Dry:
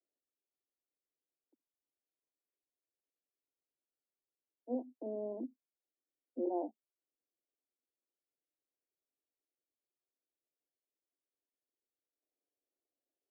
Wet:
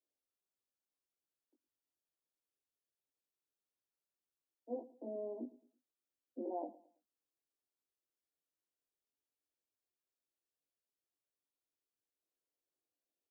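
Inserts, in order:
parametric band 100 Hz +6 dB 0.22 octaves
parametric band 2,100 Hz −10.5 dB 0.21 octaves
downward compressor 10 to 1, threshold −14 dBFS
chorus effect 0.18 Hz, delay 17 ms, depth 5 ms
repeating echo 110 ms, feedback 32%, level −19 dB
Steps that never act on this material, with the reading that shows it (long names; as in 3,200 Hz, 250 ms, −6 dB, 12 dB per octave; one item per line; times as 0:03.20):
parametric band 100 Hz: nothing at its input below 200 Hz
parametric band 2,100 Hz: nothing at its input above 910 Hz
downward compressor, threshold −14 dBFS: peak of its input −25.5 dBFS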